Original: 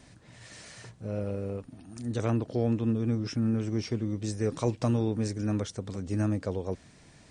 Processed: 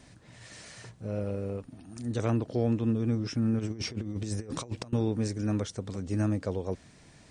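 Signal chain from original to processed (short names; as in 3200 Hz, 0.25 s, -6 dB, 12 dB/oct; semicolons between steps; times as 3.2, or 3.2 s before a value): 3.59–4.93 negative-ratio compressor -34 dBFS, ratio -0.5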